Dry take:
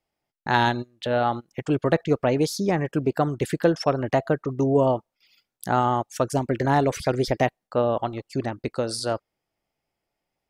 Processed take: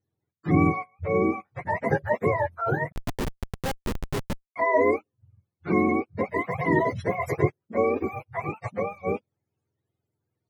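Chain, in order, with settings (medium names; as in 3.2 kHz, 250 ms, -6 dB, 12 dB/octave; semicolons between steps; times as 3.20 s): spectrum inverted on a logarithmic axis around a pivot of 520 Hz; 2.92–4.56 s: Schmitt trigger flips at -20 dBFS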